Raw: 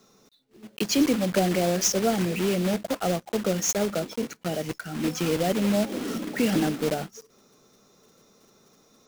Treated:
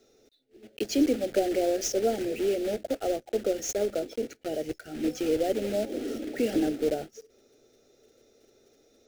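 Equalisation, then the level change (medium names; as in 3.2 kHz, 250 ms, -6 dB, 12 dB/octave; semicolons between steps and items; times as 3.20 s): treble shelf 3.6 kHz -10.5 dB; dynamic bell 2.4 kHz, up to -4 dB, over -43 dBFS, Q 0.71; static phaser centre 430 Hz, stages 4; +1.5 dB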